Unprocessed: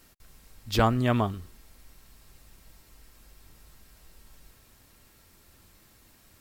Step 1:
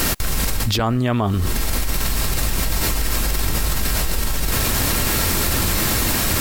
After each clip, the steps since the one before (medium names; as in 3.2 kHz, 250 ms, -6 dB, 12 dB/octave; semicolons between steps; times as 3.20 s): level flattener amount 100%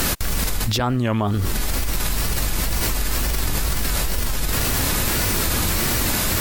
wow and flutter 150 cents; trim -1.5 dB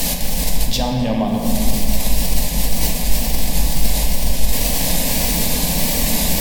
static phaser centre 360 Hz, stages 6; reverberation RT60 3.3 s, pre-delay 7 ms, DRR 0 dB; trim +2 dB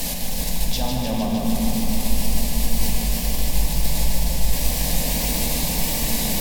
bit-crushed delay 153 ms, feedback 80%, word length 7-bit, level -6 dB; trim -6.5 dB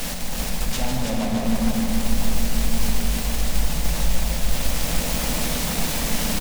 on a send: delay 332 ms -6 dB; on the sum: delay time shaken by noise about 1.5 kHz, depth 0.057 ms; trim -1.5 dB